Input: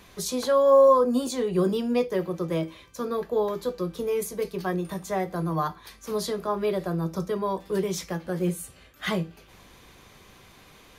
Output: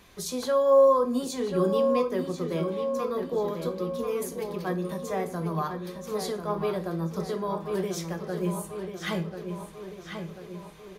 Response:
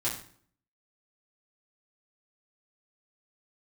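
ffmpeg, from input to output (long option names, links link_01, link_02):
-filter_complex "[0:a]asplit=2[link_01][link_02];[link_02]adelay=1040,lowpass=frequency=5000:poles=1,volume=-7dB,asplit=2[link_03][link_04];[link_04]adelay=1040,lowpass=frequency=5000:poles=1,volume=0.55,asplit=2[link_05][link_06];[link_06]adelay=1040,lowpass=frequency=5000:poles=1,volume=0.55,asplit=2[link_07][link_08];[link_08]adelay=1040,lowpass=frequency=5000:poles=1,volume=0.55,asplit=2[link_09][link_10];[link_10]adelay=1040,lowpass=frequency=5000:poles=1,volume=0.55,asplit=2[link_11][link_12];[link_12]adelay=1040,lowpass=frequency=5000:poles=1,volume=0.55,asplit=2[link_13][link_14];[link_14]adelay=1040,lowpass=frequency=5000:poles=1,volume=0.55[link_15];[link_01][link_03][link_05][link_07][link_09][link_11][link_13][link_15]amix=inputs=8:normalize=0,asplit=2[link_16][link_17];[1:a]atrim=start_sample=2205,adelay=24[link_18];[link_17][link_18]afir=irnorm=-1:irlink=0,volume=-18.5dB[link_19];[link_16][link_19]amix=inputs=2:normalize=0,volume=-3.5dB"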